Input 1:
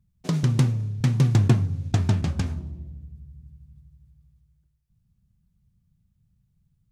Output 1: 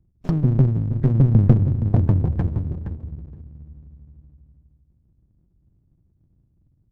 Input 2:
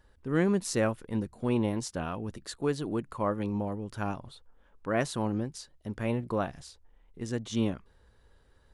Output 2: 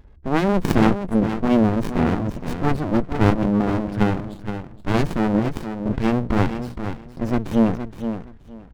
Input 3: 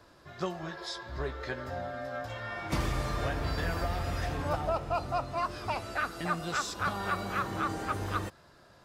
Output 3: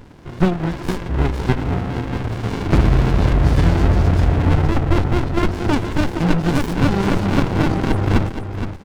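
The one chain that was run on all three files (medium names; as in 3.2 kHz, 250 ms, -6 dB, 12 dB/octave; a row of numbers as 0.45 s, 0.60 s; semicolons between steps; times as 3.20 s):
on a send: feedback delay 469 ms, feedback 19%, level -9 dB; on the sum: spectral gate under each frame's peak -25 dB strong; sliding maximum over 65 samples; peak normalisation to -2 dBFS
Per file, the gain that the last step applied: +5.0 dB, +15.5 dB, +19.0 dB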